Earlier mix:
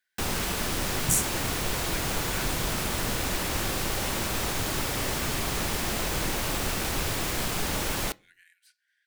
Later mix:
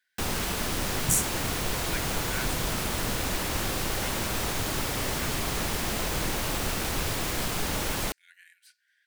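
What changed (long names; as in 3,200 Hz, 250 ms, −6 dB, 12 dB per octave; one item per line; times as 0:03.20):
speech +4.0 dB
first sound: send off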